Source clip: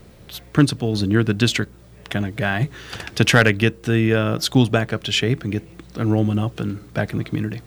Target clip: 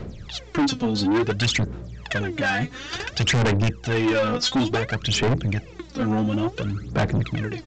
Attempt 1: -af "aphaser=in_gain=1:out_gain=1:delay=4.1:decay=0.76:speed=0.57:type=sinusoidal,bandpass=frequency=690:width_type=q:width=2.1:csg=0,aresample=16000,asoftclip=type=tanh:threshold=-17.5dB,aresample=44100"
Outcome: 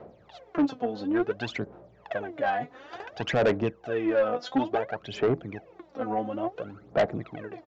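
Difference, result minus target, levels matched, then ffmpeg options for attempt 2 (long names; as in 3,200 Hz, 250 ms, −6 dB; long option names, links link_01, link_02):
500 Hz band +5.0 dB
-af "aphaser=in_gain=1:out_gain=1:delay=4.1:decay=0.76:speed=0.57:type=sinusoidal,aresample=16000,asoftclip=type=tanh:threshold=-17.5dB,aresample=44100"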